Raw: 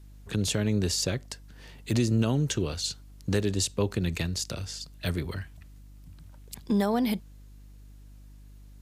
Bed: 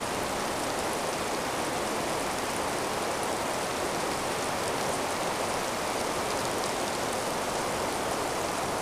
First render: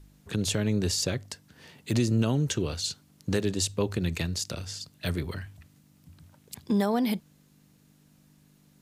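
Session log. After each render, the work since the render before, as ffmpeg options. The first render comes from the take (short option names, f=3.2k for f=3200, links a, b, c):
-af "bandreject=f=50:t=h:w=4,bandreject=f=100:t=h:w=4"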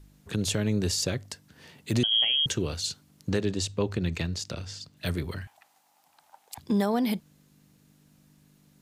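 -filter_complex "[0:a]asettb=1/sr,asplit=3[a][b][c];[a]atrim=end=2.034[d];[b]atrim=start=2.03:end=2.46,asetpts=PTS-STARTPTS,afade=t=in:d=0.004:c=qsin,afade=t=out:st=0.426:d=0.004:c=qsin,lowpass=f=2.9k:t=q:w=0.5098,lowpass=f=2.9k:t=q:w=0.6013,lowpass=f=2.9k:t=q:w=0.9,lowpass=f=2.9k:t=q:w=2.563,afreqshift=-3400[e];[c]atrim=start=2.456[f];[d][e]acrossfade=d=0.004:c1=hsin:c2=qsin[g];[g][f]acrossfade=d=0.004:c1=qsin:c2=hsin,asettb=1/sr,asplit=3[h][i][j];[h]atrim=end=3.304[k];[i]atrim=start=3.3:end=4.97,asetpts=PTS-STARTPTS,afade=t=in:d=0.004:c=qsin,afade=t=out:st=1.666:d=0.004:c=qsin,equalizer=f=12k:t=o:w=0.97:g=-12.5[l];[j]atrim=start=4.966[m];[k][l]acrossfade=d=0.004:c1=hsin:c2=qsin[n];[n][m]acrossfade=d=0.004:c1=qsin:c2=hsin,asettb=1/sr,asplit=3[o][p][q];[o]atrim=end=5.474[r];[p]atrim=start=5.47:end=6.58,asetpts=PTS-STARTPTS,afade=t=in:d=0.004:c=qsin,afade=t=out:st=1.106:d=0.004:c=qsin,highpass=f=800:t=q:w=7.6[s];[q]atrim=start=6.576[t];[r][s]acrossfade=d=0.004:c1=hsin:c2=qsin[u];[u][t]acrossfade=d=0.004:c1=qsin:c2=hsin"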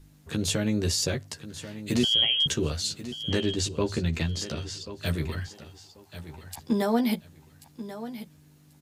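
-filter_complex "[0:a]asplit=2[a][b];[b]adelay=13,volume=-4dB[c];[a][c]amix=inputs=2:normalize=0,aecho=1:1:1087|2174|3261:0.224|0.0493|0.0108"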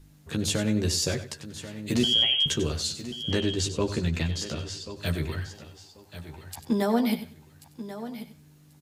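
-af "aecho=1:1:94|188|282:0.251|0.0553|0.0122"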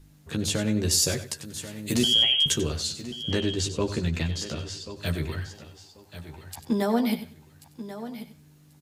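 -filter_complex "[0:a]asettb=1/sr,asplit=3[a][b][c];[a]atrim=end=0.914[d];[b]atrim=start=0.91:end=2.61,asetpts=PTS-STARTPTS,afade=t=in:d=0.004:c=qsin,afade=t=out:st=1.696:d=0.004:c=qsin,equalizer=f=12k:t=o:w=1.4:g=11[e];[c]atrim=start=2.606[f];[d][e]acrossfade=d=0.004:c1=hsin:c2=qsin[g];[g][f]acrossfade=d=0.004:c1=qsin:c2=hsin"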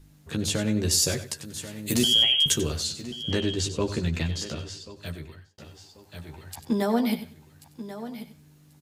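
-filter_complex "[0:a]asettb=1/sr,asplit=3[a][b][c];[a]atrim=end=1.864[d];[b]atrim=start=1.86:end=2.84,asetpts=PTS-STARTPTS,afade=t=in:d=0.004:c=qsin,afade=t=out:st=0.976:d=0.004:c=qsin,highshelf=f=11k:g=10.5[e];[c]atrim=start=2.836[f];[d][e]acrossfade=d=0.004:c1=hsin:c2=qsin[g];[g][f]acrossfade=d=0.004:c1=qsin:c2=hsin,asplit=2[h][i];[h]atrim=end=5.58,asetpts=PTS-STARTPTS,afade=t=out:st=4.43:d=1.15[j];[i]atrim=start=5.58,asetpts=PTS-STARTPTS,afade=t=in:d=0.004:c=hsin[k];[j][k]concat=n=2:v=0:a=1"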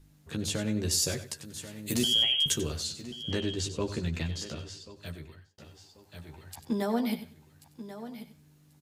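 -af "volume=-5dB"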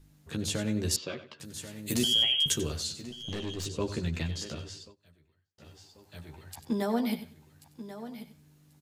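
-filter_complex "[0:a]asettb=1/sr,asplit=3[a][b][c];[a]atrim=end=0.964[d];[b]atrim=start=0.96:end=1.4,asetpts=PTS-STARTPTS,afade=t=in:d=0.004:c=qsin,afade=t=out:st=0.436:d=0.004:c=qsin,highpass=250,equalizer=f=430:t=q:w=4:g=-5,equalizer=f=810:t=q:w=4:g=-4,equalizer=f=1.2k:t=q:w=4:g=7,equalizer=f=1.8k:t=q:w=4:g=-9,equalizer=f=3k:t=q:w=4:g=4,lowpass=f=3.2k:w=0.5412,lowpass=f=3.2k:w=1.3066[e];[c]atrim=start=1.396[f];[d][e]acrossfade=d=0.004:c1=hsin:c2=qsin[g];[g][f]acrossfade=d=0.004:c1=qsin:c2=hsin,asettb=1/sr,asplit=3[h][i][j];[h]atrim=end=3.094[k];[i]atrim=start=3.09:end=3.66,asetpts=PTS-STARTPTS,afade=t=in:d=0.004:c=qsin,afade=t=out:st=0.566:d=0.004:c=qsin,aeval=exprs='(tanh(35.5*val(0)+0.5)-tanh(0.5))/35.5':c=same[l];[j]atrim=start=3.656[m];[k][l]acrossfade=d=0.004:c1=hsin:c2=qsin[n];[n][m]acrossfade=d=0.004:c1=qsin:c2=hsin,asplit=3[o][p][q];[o]atrim=end=4.96,asetpts=PTS-STARTPTS,afade=t=out:st=4.83:d=0.13:silence=0.0841395[r];[p]atrim=start=4.96:end=5.54,asetpts=PTS-STARTPTS,volume=-21.5dB[s];[q]atrim=start=5.54,asetpts=PTS-STARTPTS,afade=t=in:d=0.13:silence=0.0841395[t];[r][s][t]concat=n=3:v=0:a=1"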